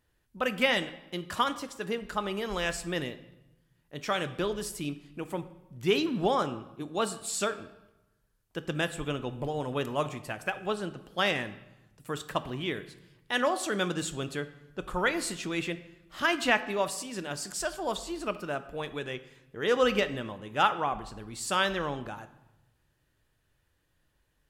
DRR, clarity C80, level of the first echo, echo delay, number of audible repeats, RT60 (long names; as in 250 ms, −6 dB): 12.0 dB, 16.5 dB, no echo audible, no echo audible, no echo audible, 1.0 s